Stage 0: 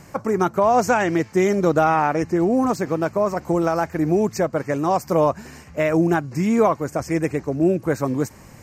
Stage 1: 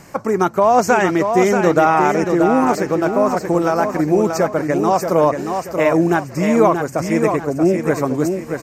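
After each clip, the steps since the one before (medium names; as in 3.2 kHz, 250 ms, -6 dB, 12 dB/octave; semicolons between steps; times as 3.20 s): peaking EQ 70 Hz -7.5 dB 2.1 oct; on a send: feedback delay 631 ms, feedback 35%, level -6 dB; on the sum: trim +4 dB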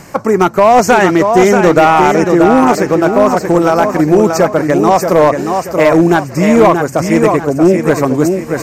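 reverse; upward compressor, threshold -23 dBFS; reverse; overload inside the chain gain 8.5 dB; trim +7 dB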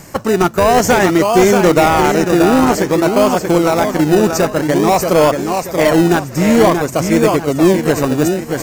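treble shelf 5.3 kHz +9 dB; in parallel at -6 dB: decimation with a swept rate 32×, swing 60% 0.52 Hz; on the sum: trim -5 dB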